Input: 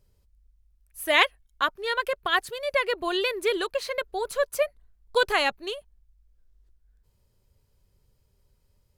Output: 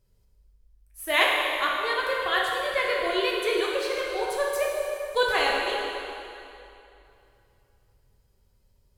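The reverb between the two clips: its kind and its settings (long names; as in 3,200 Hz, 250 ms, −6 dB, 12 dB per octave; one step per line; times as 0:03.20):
dense smooth reverb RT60 2.8 s, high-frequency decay 0.85×, DRR −3.5 dB
level −4 dB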